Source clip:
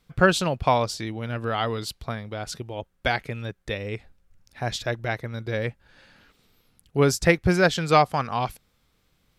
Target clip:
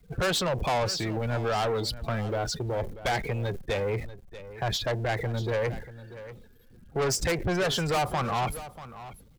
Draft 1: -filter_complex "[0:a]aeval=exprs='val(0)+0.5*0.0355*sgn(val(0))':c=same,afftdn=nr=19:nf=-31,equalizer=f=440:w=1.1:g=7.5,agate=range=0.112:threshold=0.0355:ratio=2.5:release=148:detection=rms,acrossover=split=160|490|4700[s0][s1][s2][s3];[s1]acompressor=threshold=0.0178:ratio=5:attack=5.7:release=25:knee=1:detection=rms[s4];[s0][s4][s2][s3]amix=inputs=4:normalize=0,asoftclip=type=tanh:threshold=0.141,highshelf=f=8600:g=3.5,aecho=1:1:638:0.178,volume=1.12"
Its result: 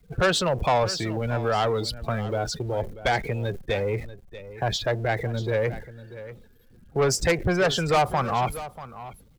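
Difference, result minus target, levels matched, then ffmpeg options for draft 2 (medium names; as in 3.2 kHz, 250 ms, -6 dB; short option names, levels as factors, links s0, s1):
saturation: distortion -5 dB
-filter_complex "[0:a]aeval=exprs='val(0)+0.5*0.0355*sgn(val(0))':c=same,afftdn=nr=19:nf=-31,equalizer=f=440:w=1.1:g=7.5,agate=range=0.112:threshold=0.0355:ratio=2.5:release=148:detection=rms,acrossover=split=160|490|4700[s0][s1][s2][s3];[s1]acompressor=threshold=0.0178:ratio=5:attack=5.7:release=25:knee=1:detection=rms[s4];[s0][s4][s2][s3]amix=inputs=4:normalize=0,asoftclip=type=tanh:threshold=0.0596,highshelf=f=8600:g=3.5,aecho=1:1:638:0.178,volume=1.12"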